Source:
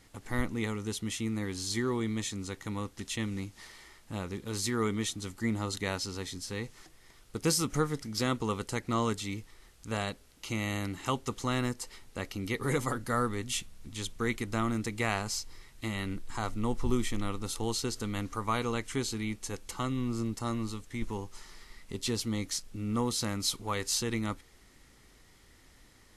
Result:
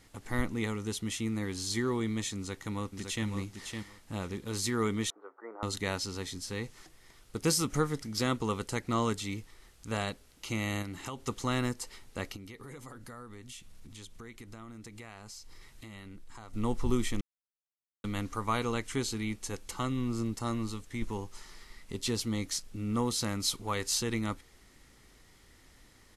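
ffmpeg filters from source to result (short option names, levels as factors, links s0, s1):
-filter_complex "[0:a]asplit=2[s0][s1];[s1]afade=t=in:st=2.36:d=0.01,afade=t=out:st=3.26:d=0.01,aecho=0:1:560|1120|1680:0.501187|0.0751781|0.0112767[s2];[s0][s2]amix=inputs=2:normalize=0,asettb=1/sr,asplit=3[s3][s4][s5];[s3]atrim=end=5.104[s6];[s4]atrim=start=5.1:end=5.63,asetpts=PTS-STARTPTS,afade=t=in:d=0.004:c=qsin,afade=t=out:st=0.526:d=0.004:c=qsin,asuperpass=centerf=770:order=8:qfactor=0.74[s7];[s5]atrim=start=5.626[s8];[s6][s7]acrossfade=d=0.004:c1=hsin:c2=qsin[s9];[s9][s8]acrossfade=d=0.004:c1=qsin:c2=hsin,asettb=1/sr,asplit=3[s10][s11][s12];[s10]atrim=end=10.824[s13];[s11]atrim=start=10.82:end=11.22,asetpts=PTS-STARTPTS,afade=t=in:d=0.004:c=qsin,afade=t=out:st=0.396:d=0.004:c=qsin,acompressor=threshold=0.0178:ratio=6:attack=3.2:release=140:knee=1:detection=peak[s14];[s12]atrim=start=11.216[s15];[s13][s14]acrossfade=d=0.004:c1=hsin:c2=qsin[s16];[s16][s15]acrossfade=d=0.004:c1=qsin:c2=hsin,asplit=3[s17][s18][s19];[s17]afade=t=out:st=12.35:d=0.02[s20];[s18]acompressor=threshold=0.00562:ratio=5:attack=3.2:release=140:knee=1:detection=peak,afade=t=in:st=12.35:d=0.02,afade=t=out:st=16.53:d=0.02[s21];[s19]afade=t=in:st=16.53:d=0.02[s22];[s20][s21][s22]amix=inputs=3:normalize=0,asplit=3[s23][s24][s25];[s23]atrim=end=17.21,asetpts=PTS-STARTPTS,afade=t=out:st=17.206:d=0.004:c=hsin[s26];[s24]atrim=start=17.21:end=18.04,asetpts=PTS-STARTPTS,volume=0[s27];[s25]atrim=start=18.04,asetpts=PTS-STARTPTS,afade=t=in:d=0.004:c=hsin[s28];[s26][s27][s28]concat=n=3:v=0:a=1"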